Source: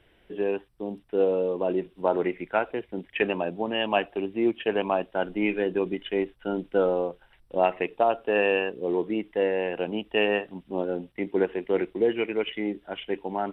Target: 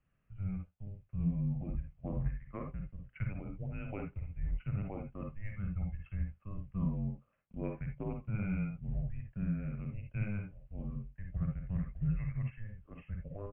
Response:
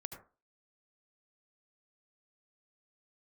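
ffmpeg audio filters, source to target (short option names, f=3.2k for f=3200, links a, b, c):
-filter_complex "[0:a]highpass=f=240:t=q:w=0.5412,highpass=f=240:t=q:w=1.307,lowpass=f=3.1k:t=q:w=0.5176,lowpass=f=3.1k:t=q:w=0.7071,lowpass=f=3.1k:t=q:w=1.932,afreqshift=-310,firequalizer=gain_entry='entry(120,0);entry(360,-13);entry(560,-6);entry(1500,-12)':delay=0.05:min_phase=1[a];[1:a]atrim=start_sample=2205,afade=t=out:st=0.18:d=0.01,atrim=end_sample=8379,asetrate=66150,aresample=44100[b];[a][b]afir=irnorm=-1:irlink=0,volume=-2.5dB"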